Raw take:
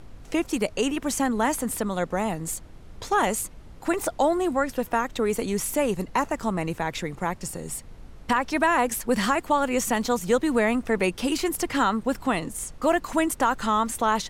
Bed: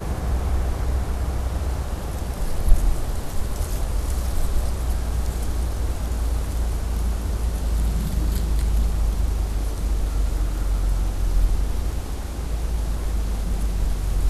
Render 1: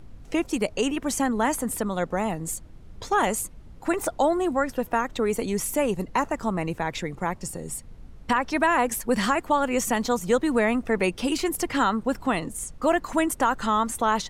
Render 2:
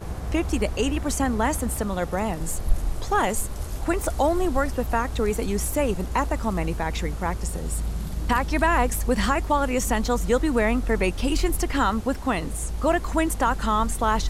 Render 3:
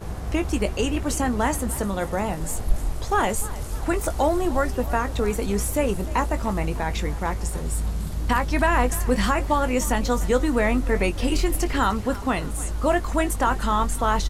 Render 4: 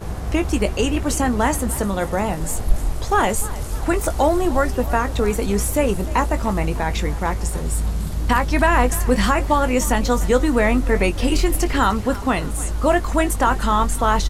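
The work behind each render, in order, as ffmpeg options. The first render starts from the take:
ffmpeg -i in.wav -af "afftdn=noise_reduction=6:noise_floor=-45" out.wav
ffmpeg -i in.wav -i bed.wav -filter_complex "[1:a]volume=-6dB[link_01];[0:a][link_01]amix=inputs=2:normalize=0" out.wav
ffmpeg -i in.wav -filter_complex "[0:a]asplit=2[link_01][link_02];[link_02]adelay=20,volume=-10.5dB[link_03];[link_01][link_03]amix=inputs=2:normalize=0,asplit=5[link_04][link_05][link_06][link_07][link_08];[link_05]adelay=300,afreqshift=35,volume=-18dB[link_09];[link_06]adelay=600,afreqshift=70,volume=-23.7dB[link_10];[link_07]adelay=900,afreqshift=105,volume=-29.4dB[link_11];[link_08]adelay=1200,afreqshift=140,volume=-35dB[link_12];[link_04][link_09][link_10][link_11][link_12]amix=inputs=5:normalize=0" out.wav
ffmpeg -i in.wav -af "volume=4dB" out.wav

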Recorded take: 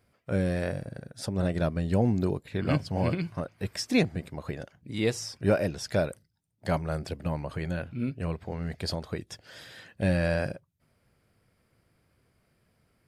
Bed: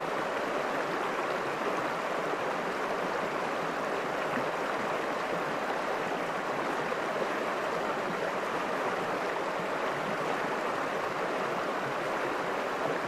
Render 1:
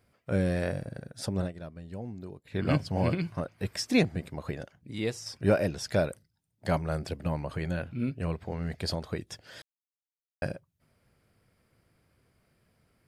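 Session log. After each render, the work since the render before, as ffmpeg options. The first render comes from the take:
ffmpeg -i in.wav -filter_complex "[0:a]asplit=6[link_01][link_02][link_03][link_04][link_05][link_06];[link_01]atrim=end=1.52,asetpts=PTS-STARTPTS,afade=type=out:start_time=1.36:duration=0.16:silence=0.177828[link_07];[link_02]atrim=start=1.52:end=2.43,asetpts=PTS-STARTPTS,volume=-15dB[link_08];[link_03]atrim=start=2.43:end=5.26,asetpts=PTS-STARTPTS,afade=type=in:duration=0.16:silence=0.177828,afade=type=out:start_time=2.08:duration=0.75:silence=0.446684[link_09];[link_04]atrim=start=5.26:end=9.62,asetpts=PTS-STARTPTS,afade=type=in:duration=0.004:curve=hsin:silence=0.446684,afade=type=out:start_time=4.356:duration=0.004:curve=hsin[link_10];[link_05]atrim=start=9.62:end=10.42,asetpts=PTS-STARTPTS,volume=0[link_11];[link_06]atrim=start=10.42,asetpts=PTS-STARTPTS,afade=type=in:duration=0.004:curve=hsin[link_12];[link_07][link_08][link_09][link_10][link_11][link_12]concat=n=6:v=0:a=1" out.wav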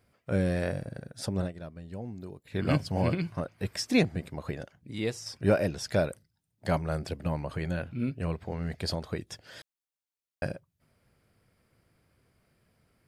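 ffmpeg -i in.wav -filter_complex "[0:a]asettb=1/sr,asplit=3[link_01][link_02][link_03];[link_01]atrim=end=2.124[link_04];[link_02]atrim=start=2.12:end=3.02,asetpts=PTS-STARTPTS,afade=type=in:duration=0.004:curve=qsin,afade=type=out:start_time=0.896:duration=0.004:curve=qsin,highshelf=frequency=7500:gain=6[link_05];[link_03]atrim=start=3.016[link_06];[link_04][link_05]acrossfade=duration=0.004:curve1=hsin:curve2=qsin[link_07];[link_07][link_06]acrossfade=duration=0.004:curve1=qsin:curve2=hsin" out.wav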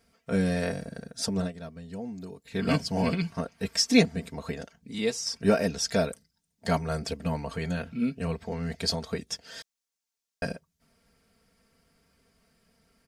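ffmpeg -i in.wav -af "equalizer=frequency=6000:width=1.1:gain=8,aecho=1:1:4.4:0.78" out.wav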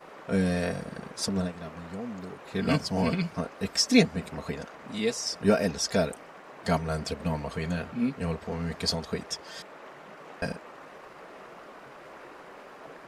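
ffmpeg -i in.wav -i bed.wav -filter_complex "[1:a]volume=-15dB[link_01];[0:a][link_01]amix=inputs=2:normalize=0" out.wav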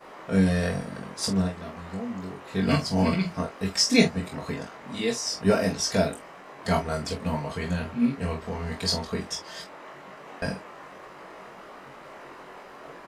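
ffmpeg -i in.wav -filter_complex "[0:a]asplit=2[link_01][link_02];[link_02]adelay=22,volume=-8dB[link_03];[link_01][link_03]amix=inputs=2:normalize=0,asplit=2[link_04][link_05];[link_05]aecho=0:1:21|46:0.668|0.355[link_06];[link_04][link_06]amix=inputs=2:normalize=0" out.wav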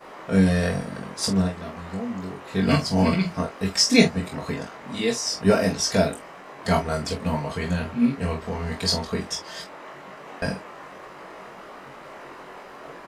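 ffmpeg -i in.wav -af "volume=3dB" out.wav

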